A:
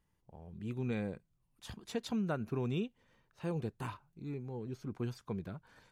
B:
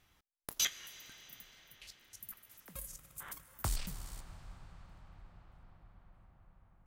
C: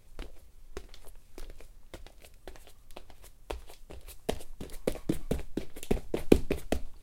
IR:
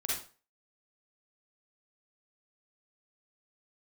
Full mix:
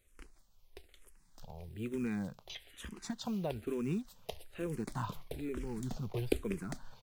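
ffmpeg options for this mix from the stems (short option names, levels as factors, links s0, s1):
-filter_complex "[0:a]acrusher=bits=7:mode=log:mix=0:aa=0.000001,adelay=1150,volume=0.794[s0];[1:a]lowpass=3500,adelay=1900,volume=0.188[s1];[2:a]tiltshelf=f=970:g=-3.5,volume=0.422[s2];[s0][s1]amix=inputs=2:normalize=0,acontrast=72,alimiter=level_in=1.06:limit=0.0631:level=0:latency=1:release=300,volume=0.944,volume=1[s3];[s2][s3]amix=inputs=2:normalize=0,asplit=2[s4][s5];[s5]afreqshift=-1.1[s6];[s4][s6]amix=inputs=2:normalize=1"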